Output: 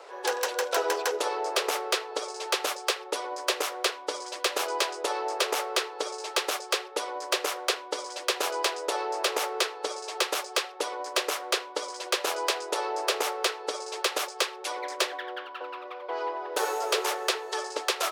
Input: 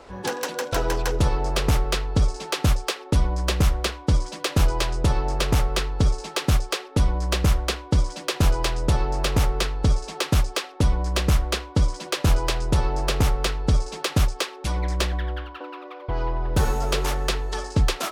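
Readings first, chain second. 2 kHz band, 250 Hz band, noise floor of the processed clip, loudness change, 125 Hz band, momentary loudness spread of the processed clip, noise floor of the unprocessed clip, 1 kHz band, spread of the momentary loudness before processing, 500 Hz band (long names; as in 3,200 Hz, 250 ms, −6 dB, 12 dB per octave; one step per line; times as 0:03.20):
0.0 dB, −14.0 dB, −42 dBFS, −5.0 dB, below −40 dB, 7 LU, −41 dBFS, 0.0 dB, 5 LU, −0.5 dB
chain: Butterworth high-pass 380 Hz 48 dB per octave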